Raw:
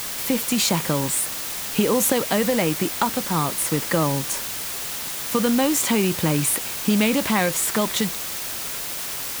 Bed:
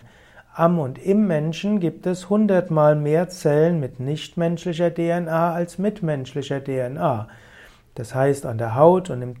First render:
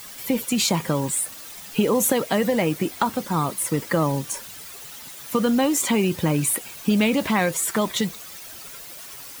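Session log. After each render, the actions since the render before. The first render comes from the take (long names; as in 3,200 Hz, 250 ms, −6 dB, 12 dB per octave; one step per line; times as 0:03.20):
broadband denoise 12 dB, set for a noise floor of −30 dBFS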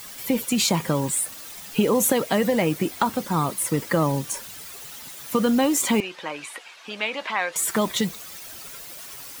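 0:06.00–0:07.56: band-pass filter 780–3,700 Hz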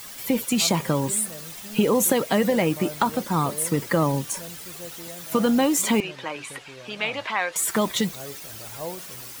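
mix in bed −21 dB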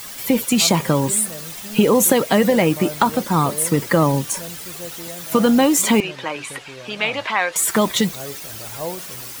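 level +5.5 dB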